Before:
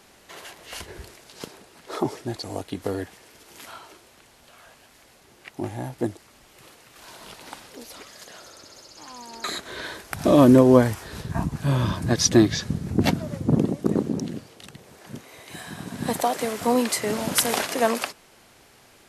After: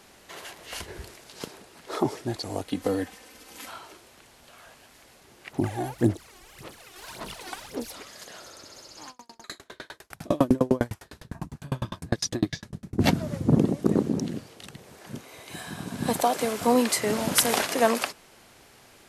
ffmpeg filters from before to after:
-filter_complex "[0:a]asettb=1/sr,asplit=3[a][b][c];[a]atrim=end=2.674[d];[b]atrim=start=2.67:end=3.7,asetpts=PTS-STARTPTS,afade=t=in:d=0.004:c=qsin,afade=t=out:st=1.026:d=0.004:c=qsin,aecho=1:1:3.9:0.65,atrim=end_sample=45423[e];[c]atrim=start=3.696[f];[d][e]acrossfade=d=0.004:c1=hsin:c2=qsin[g];[g][f]acrossfade=d=0.004:c1=qsin:c2=hsin,asplit=3[h][i][j];[h]afade=t=out:st=5.51:d=0.02[k];[i]aphaser=in_gain=1:out_gain=1:delay=2.8:decay=0.7:speed=1.8:type=sinusoidal,afade=t=in:st=5.51:d=0.02,afade=t=out:st=7.9:d=0.02[l];[j]afade=t=in:st=7.9:d=0.02[m];[k][l][m]amix=inputs=3:normalize=0,asplit=3[n][o][p];[n]afade=t=out:st=9.09:d=0.02[q];[o]aeval=exprs='val(0)*pow(10,-38*if(lt(mod(9.9*n/s,1),2*abs(9.9)/1000),1-mod(9.9*n/s,1)/(2*abs(9.9)/1000),(mod(9.9*n/s,1)-2*abs(9.9)/1000)/(1-2*abs(9.9)/1000))/20)':c=same,afade=t=in:st=9.09:d=0.02,afade=t=out:st=12.98:d=0.02[r];[p]afade=t=in:st=12.98:d=0.02[s];[q][r][s]amix=inputs=3:normalize=0,asettb=1/sr,asplit=3[t][u][v];[t]atrim=end=15.134[w];[u]atrim=start=15.13:end=16.69,asetpts=PTS-STARTPTS,afade=t=in:d=0.004:c=qsin,afade=t=out:st=1.556:d=0.004:c=qsin,bandreject=f=1.9k:w=12[x];[v]atrim=start=16.686[y];[w][x]acrossfade=d=0.004:c1=hsin:c2=qsin[z];[z][y]acrossfade=d=0.004:c1=qsin:c2=hsin"

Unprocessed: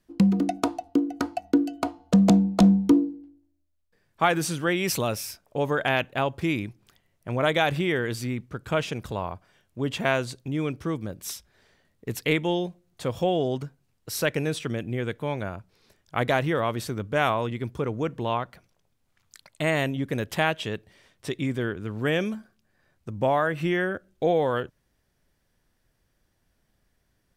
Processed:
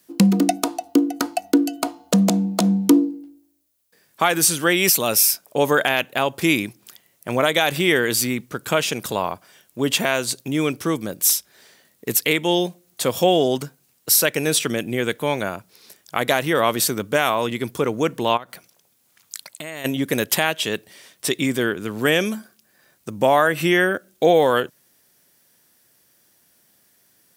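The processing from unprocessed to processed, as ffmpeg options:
-filter_complex "[0:a]asplit=3[a][b][c];[a]afade=t=out:st=18.36:d=0.02[d];[b]acompressor=threshold=-41dB:ratio=4:attack=3.2:release=140:knee=1:detection=peak,afade=t=in:st=18.36:d=0.02,afade=t=out:st=19.84:d=0.02[e];[c]afade=t=in:st=19.84:d=0.02[f];[d][e][f]amix=inputs=3:normalize=0,highpass=190,aemphasis=mode=production:type=75kf,alimiter=limit=-12dB:level=0:latency=1:release=278,volume=7.5dB"

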